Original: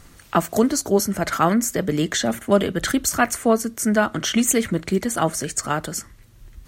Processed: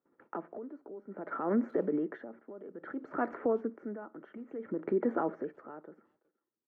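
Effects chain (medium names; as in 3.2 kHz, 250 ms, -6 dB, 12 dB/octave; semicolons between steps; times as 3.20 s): high-pass 260 Hz 24 dB/octave; gate -49 dBFS, range -33 dB; low-pass 1.6 kHz 24 dB/octave; tilt shelf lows +7.5 dB, about 740 Hz; comb 2.2 ms, depth 30%; compression 2.5:1, threshold -20 dBFS, peak gain reduction 8 dB; peak limiter -20 dBFS, peak gain reduction 10.5 dB; speakerphone echo 370 ms, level -29 dB; logarithmic tremolo 0.59 Hz, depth 19 dB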